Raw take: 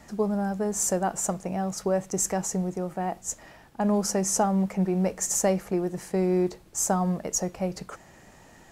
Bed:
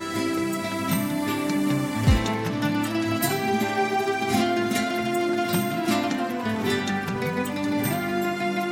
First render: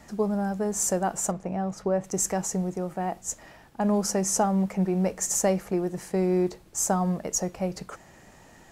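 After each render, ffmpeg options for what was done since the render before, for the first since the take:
ffmpeg -i in.wav -filter_complex "[0:a]asettb=1/sr,asplit=3[link_01][link_02][link_03];[link_01]atrim=end=1.314[link_04];[link_02]atrim=start=1.31:end=2.04,asetpts=PTS-STARTPTS,afade=type=in:duration=0.004:curve=qsin,afade=type=out:start_time=0.726:duration=0.004:curve=qsin,lowpass=frequency=2000:poles=1[link_05];[link_03]atrim=start=2.036[link_06];[link_04][link_05]acrossfade=duration=0.004:curve1=hsin:curve2=qsin[link_07];[link_07][link_06]acrossfade=duration=0.004:curve1=qsin:curve2=hsin" out.wav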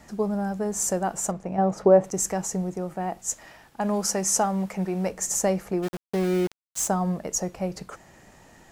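ffmpeg -i in.wav -filter_complex "[0:a]asettb=1/sr,asplit=3[link_01][link_02][link_03];[link_01]atrim=end=1.584[link_04];[link_02]atrim=start=1.58:end=2.1,asetpts=PTS-STARTPTS,afade=type=in:duration=0.004:curve=qsin,afade=type=out:start_time=0.516:duration=0.004:curve=qsin,equalizer=frequency=520:width_type=o:width=2.8:gain=10.5[link_05];[link_03]atrim=start=2.096[link_06];[link_04][link_05]acrossfade=duration=0.004:curve1=hsin:curve2=qsin[link_07];[link_07][link_06]acrossfade=duration=0.004:curve1=qsin:curve2=hsin,asettb=1/sr,asplit=3[link_08][link_09][link_10];[link_08]atrim=end=3.194[link_11];[link_09]atrim=start=3.19:end=5.09,asetpts=PTS-STARTPTS,afade=type=in:duration=0.004:curve=qsin,afade=type=out:start_time=1.896:duration=0.004:curve=qsin,tiltshelf=frequency=640:gain=-3.5[link_12];[link_10]atrim=start=5.086[link_13];[link_11][link_12]acrossfade=duration=0.004:curve1=hsin:curve2=qsin[link_14];[link_14][link_13]acrossfade=duration=0.004:curve1=qsin:curve2=hsin,asplit=3[link_15][link_16][link_17];[link_15]afade=type=out:start_time=5.82:duration=0.02[link_18];[link_16]aeval=exprs='val(0)*gte(abs(val(0)),0.0299)':channel_layout=same,afade=type=in:start_time=5.82:duration=0.02,afade=type=out:start_time=6.87:duration=0.02[link_19];[link_17]afade=type=in:start_time=6.87:duration=0.02[link_20];[link_18][link_19][link_20]amix=inputs=3:normalize=0" out.wav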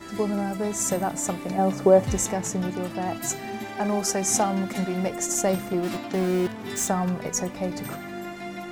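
ffmpeg -i in.wav -i bed.wav -filter_complex "[1:a]volume=-10dB[link_01];[0:a][link_01]amix=inputs=2:normalize=0" out.wav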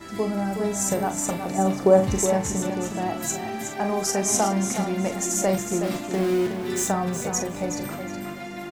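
ffmpeg -i in.wav -filter_complex "[0:a]asplit=2[link_01][link_02];[link_02]adelay=41,volume=-8.5dB[link_03];[link_01][link_03]amix=inputs=2:normalize=0,aecho=1:1:369|738|1107:0.398|0.0955|0.0229" out.wav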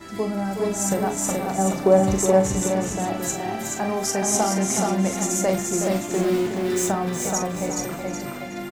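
ffmpeg -i in.wav -af "aecho=1:1:426:0.668" out.wav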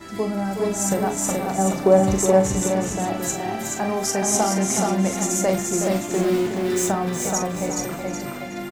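ffmpeg -i in.wav -af "volume=1dB" out.wav

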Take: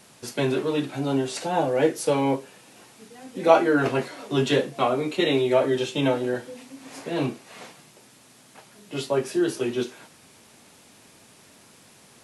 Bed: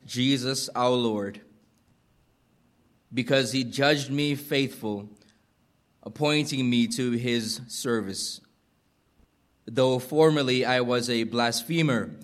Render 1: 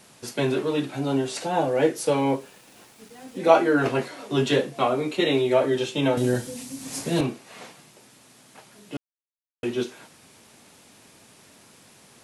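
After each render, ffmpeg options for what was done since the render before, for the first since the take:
ffmpeg -i in.wav -filter_complex "[0:a]asettb=1/sr,asplit=3[link_01][link_02][link_03];[link_01]atrim=end=2.244[link_04];[link_02]atrim=start=2.24:end=3.38,asetpts=PTS-STARTPTS,afade=type=in:duration=0.004:curve=qsin,afade=type=out:start_time=1.136:duration=0.004:curve=qsin,aeval=exprs='val(0)*gte(abs(val(0)),0.00282)':channel_layout=same[link_05];[link_03]atrim=start=3.376[link_06];[link_04][link_05]acrossfade=duration=0.004:curve1=hsin:curve2=qsin[link_07];[link_07][link_06]acrossfade=duration=0.004:curve1=qsin:curve2=hsin,asettb=1/sr,asplit=3[link_08][link_09][link_10];[link_08]atrim=end=6.174[link_11];[link_09]atrim=start=6.17:end=7.21,asetpts=PTS-STARTPTS,afade=type=in:duration=0.004:curve=qsin,afade=type=out:start_time=1.036:duration=0.004:curve=qsin,bass=frequency=250:gain=13,treble=frequency=4000:gain=14[link_12];[link_10]atrim=start=7.206[link_13];[link_11][link_12]acrossfade=duration=0.004:curve1=hsin:curve2=qsin[link_14];[link_14][link_13]acrossfade=duration=0.004:curve1=qsin:curve2=hsin,asplit=3[link_15][link_16][link_17];[link_15]atrim=end=8.97,asetpts=PTS-STARTPTS,afade=type=out:start_time=8.966:duration=0.004:curve=hsin[link_18];[link_16]atrim=start=8.97:end=9.63,asetpts=PTS-STARTPTS,volume=0[link_19];[link_17]atrim=start=9.63,asetpts=PTS-STARTPTS,afade=type=in:duration=0.004:curve=hsin[link_20];[link_18][link_19][link_20]concat=n=3:v=0:a=1" out.wav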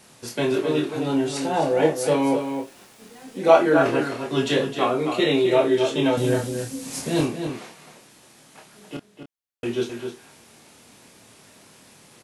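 ffmpeg -i in.wav -filter_complex "[0:a]asplit=2[link_01][link_02];[link_02]adelay=26,volume=-5dB[link_03];[link_01][link_03]amix=inputs=2:normalize=0,asplit=2[link_04][link_05];[link_05]adelay=262.4,volume=-7dB,highshelf=frequency=4000:gain=-5.9[link_06];[link_04][link_06]amix=inputs=2:normalize=0" out.wav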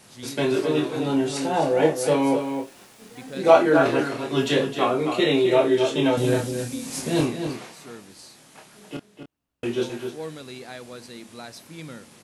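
ffmpeg -i in.wav -i bed.wav -filter_complex "[1:a]volume=-15.5dB[link_01];[0:a][link_01]amix=inputs=2:normalize=0" out.wav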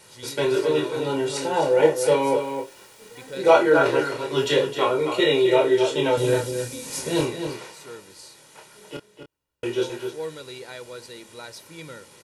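ffmpeg -i in.wav -af "lowshelf=frequency=210:gain=-4.5,aecho=1:1:2.1:0.61" out.wav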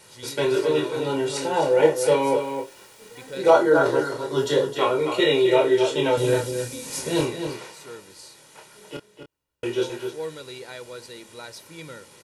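ffmpeg -i in.wav -filter_complex "[0:a]asettb=1/sr,asplit=3[link_01][link_02][link_03];[link_01]atrim=end=3.504[link_04];[link_02]atrim=start=3.5:end=4.76,asetpts=PTS-STARTPTS,afade=type=in:duration=0.004:curve=qsin,afade=type=out:start_time=1.256:duration=0.004:curve=qsin,equalizer=frequency=2500:width=2.5:gain=-14[link_05];[link_03]atrim=start=4.756[link_06];[link_04][link_05]acrossfade=duration=0.004:curve1=hsin:curve2=qsin[link_07];[link_07][link_06]acrossfade=duration=0.004:curve1=qsin:curve2=hsin" out.wav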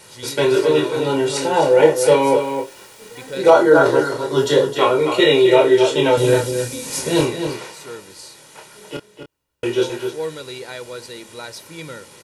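ffmpeg -i in.wav -af "volume=6dB,alimiter=limit=-1dB:level=0:latency=1" out.wav

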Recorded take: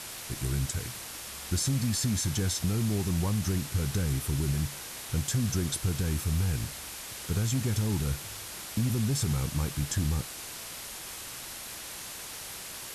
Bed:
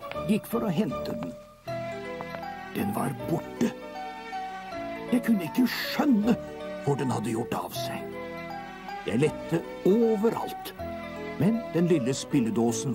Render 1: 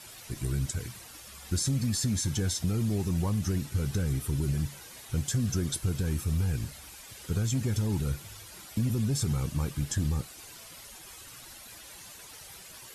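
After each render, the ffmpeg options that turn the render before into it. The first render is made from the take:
ffmpeg -i in.wav -af "afftdn=noise_reduction=11:noise_floor=-42" out.wav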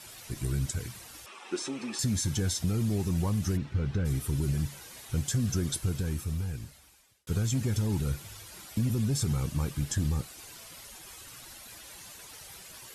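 ffmpeg -i in.wav -filter_complex "[0:a]asettb=1/sr,asplit=3[link_01][link_02][link_03];[link_01]atrim=end=1.264[link_04];[link_02]atrim=start=1.26:end=1.99,asetpts=PTS-STARTPTS,afade=type=in:duration=0.004:curve=qsin,afade=type=out:start_time=0.726:duration=0.004:curve=qsin,highpass=frequency=270:width=0.5412,highpass=frequency=270:width=1.3066,equalizer=frequency=370:width_type=q:width=4:gain=9,equalizer=frequency=860:width_type=q:width=4:gain=9,equalizer=frequency=1200:width_type=q:width=4:gain=7,equalizer=frequency=2600:width_type=q:width=4:gain=8,equalizer=frequency=4600:width_type=q:width=4:gain=-8,equalizer=frequency=6900:width_type=q:width=4:gain=-9,lowpass=frequency=7600:width=0.5412,lowpass=frequency=7600:width=1.3066[link_05];[link_03]atrim=start=1.986[link_06];[link_04][link_05]acrossfade=duration=0.004:curve1=hsin:curve2=qsin[link_07];[link_07][link_06]acrossfade=duration=0.004:curve1=qsin:curve2=hsin,asplit=3[link_08][link_09][link_10];[link_08]afade=type=out:start_time=3.56:duration=0.02[link_11];[link_09]lowpass=2900,afade=type=in:start_time=3.56:duration=0.02,afade=type=out:start_time=4.04:duration=0.02[link_12];[link_10]afade=type=in:start_time=4.04:duration=0.02[link_13];[link_11][link_12][link_13]amix=inputs=3:normalize=0,asplit=2[link_14][link_15];[link_14]atrim=end=7.27,asetpts=PTS-STARTPTS,afade=type=out:start_time=5.78:duration=1.49[link_16];[link_15]atrim=start=7.27,asetpts=PTS-STARTPTS,afade=type=in:duration=0.004:curve=hsin[link_17];[link_16][link_17]concat=n=2:v=0:a=1" out.wav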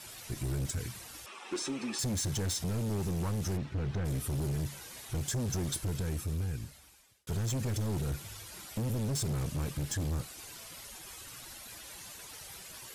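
ffmpeg -i in.wav -af "asoftclip=type=hard:threshold=-30dB" out.wav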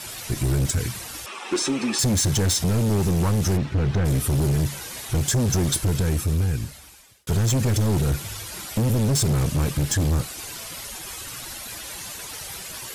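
ffmpeg -i in.wav -af "volume=12dB" out.wav

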